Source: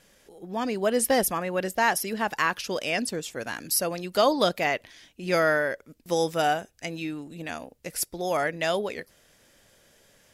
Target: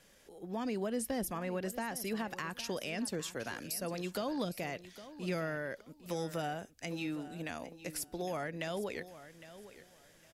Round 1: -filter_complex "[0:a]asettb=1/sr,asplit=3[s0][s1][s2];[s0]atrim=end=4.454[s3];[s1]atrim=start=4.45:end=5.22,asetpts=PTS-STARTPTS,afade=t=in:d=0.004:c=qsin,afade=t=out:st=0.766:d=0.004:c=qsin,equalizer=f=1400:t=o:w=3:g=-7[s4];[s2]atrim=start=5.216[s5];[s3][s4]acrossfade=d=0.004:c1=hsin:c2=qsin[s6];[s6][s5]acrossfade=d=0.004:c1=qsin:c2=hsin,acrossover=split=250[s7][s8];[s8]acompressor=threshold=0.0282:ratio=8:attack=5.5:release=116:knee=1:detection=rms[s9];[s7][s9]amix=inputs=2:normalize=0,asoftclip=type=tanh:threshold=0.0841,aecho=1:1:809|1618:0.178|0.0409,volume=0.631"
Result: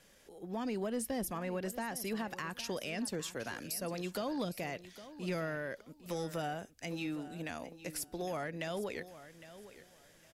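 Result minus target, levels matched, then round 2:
saturation: distortion +21 dB
-filter_complex "[0:a]asettb=1/sr,asplit=3[s0][s1][s2];[s0]atrim=end=4.454[s3];[s1]atrim=start=4.45:end=5.22,asetpts=PTS-STARTPTS,afade=t=in:d=0.004:c=qsin,afade=t=out:st=0.766:d=0.004:c=qsin,equalizer=f=1400:t=o:w=3:g=-7[s4];[s2]atrim=start=5.216[s5];[s3][s4]acrossfade=d=0.004:c1=hsin:c2=qsin[s6];[s6][s5]acrossfade=d=0.004:c1=qsin:c2=hsin,acrossover=split=250[s7][s8];[s8]acompressor=threshold=0.0282:ratio=8:attack=5.5:release=116:knee=1:detection=rms[s9];[s7][s9]amix=inputs=2:normalize=0,asoftclip=type=tanh:threshold=0.316,aecho=1:1:809|1618:0.178|0.0409,volume=0.631"

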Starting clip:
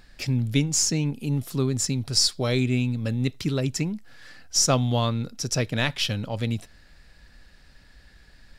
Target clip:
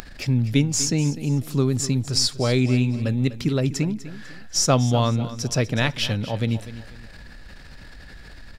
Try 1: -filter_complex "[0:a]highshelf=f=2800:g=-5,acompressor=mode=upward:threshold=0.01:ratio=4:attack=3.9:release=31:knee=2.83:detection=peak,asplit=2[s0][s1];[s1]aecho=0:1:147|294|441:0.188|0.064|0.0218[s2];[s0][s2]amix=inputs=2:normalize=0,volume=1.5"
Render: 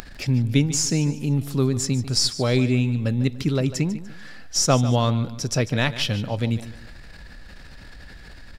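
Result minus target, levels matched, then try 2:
echo 101 ms early
-filter_complex "[0:a]highshelf=f=2800:g=-5,acompressor=mode=upward:threshold=0.01:ratio=4:attack=3.9:release=31:knee=2.83:detection=peak,asplit=2[s0][s1];[s1]aecho=0:1:248|496|744:0.188|0.064|0.0218[s2];[s0][s2]amix=inputs=2:normalize=0,volume=1.5"

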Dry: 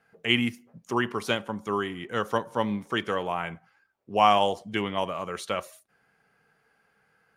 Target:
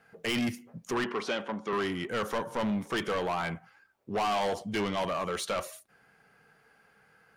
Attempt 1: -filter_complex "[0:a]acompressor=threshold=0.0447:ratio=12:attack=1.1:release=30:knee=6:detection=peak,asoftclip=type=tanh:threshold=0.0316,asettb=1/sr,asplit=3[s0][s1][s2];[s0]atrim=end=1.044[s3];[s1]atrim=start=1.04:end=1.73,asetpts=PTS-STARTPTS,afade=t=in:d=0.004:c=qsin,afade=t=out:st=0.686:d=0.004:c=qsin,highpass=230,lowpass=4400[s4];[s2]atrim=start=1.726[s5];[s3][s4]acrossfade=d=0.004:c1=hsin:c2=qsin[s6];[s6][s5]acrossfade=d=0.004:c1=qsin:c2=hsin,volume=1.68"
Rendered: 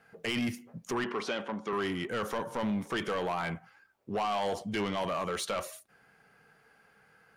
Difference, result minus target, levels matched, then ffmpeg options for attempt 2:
compression: peak gain reduction +6.5 dB
-filter_complex "[0:a]acompressor=threshold=0.1:ratio=12:attack=1.1:release=30:knee=6:detection=peak,asoftclip=type=tanh:threshold=0.0316,asettb=1/sr,asplit=3[s0][s1][s2];[s0]atrim=end=1.044[s3];[s1]atrim=start=1.04:end=1.73,asetpts=PTS-STARTPTS,afade=t=in:d=0.004:c=qsin,afade=t=out:st=0.686:d=0.004:c=qsin,highpass=230,lowpass=4400[s4];[s2]atrim=start=1.726[s5];[s3][s4]acrossfade=d=0.004:c1=hsin:c2=qsin[s6];[s6][s5]acrossfade=d=0.004:c1=qsin:c2=hsin,volume=1.68"

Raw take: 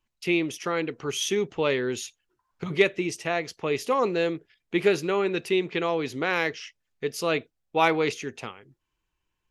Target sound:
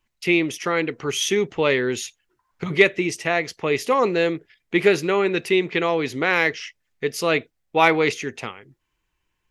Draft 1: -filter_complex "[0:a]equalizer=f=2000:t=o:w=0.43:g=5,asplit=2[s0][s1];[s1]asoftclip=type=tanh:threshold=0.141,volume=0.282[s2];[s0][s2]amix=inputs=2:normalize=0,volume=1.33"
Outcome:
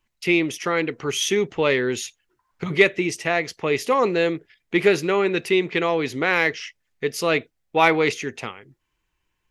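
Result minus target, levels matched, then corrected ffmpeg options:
saturation: distortion +10 dB
-filter_complex "[0:a]equalizer=f=2000:t=o:w=0.43:g=5,asplit=2[s0][s1];[s1]asoftclip=type=tanh:threshold=0.355,volume=0.282[s2];[s0][s2]amix=inputs=2:normalize=0,volume=1.33"

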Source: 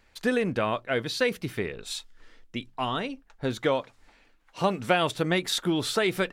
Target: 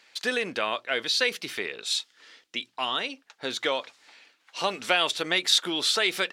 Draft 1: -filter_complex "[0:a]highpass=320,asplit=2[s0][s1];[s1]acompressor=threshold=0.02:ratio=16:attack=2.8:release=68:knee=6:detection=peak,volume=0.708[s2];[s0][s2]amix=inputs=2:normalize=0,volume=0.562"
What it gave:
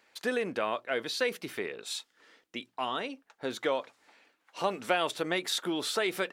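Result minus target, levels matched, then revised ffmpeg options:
4 kHz band -4.5 dB
-filter_complex "[0:a]highpass=320,equalizer=f=4300:w=0.45:g=12.5,asplit=2[s0][s1];[s1]acompressor=threshold=0.02:ratio=16:attack=2.8:release=68:knee=6:detection=peak,volume=0.708[s2];[s0][s2]amix=inputs=2:normalize=0,volume=0.562"

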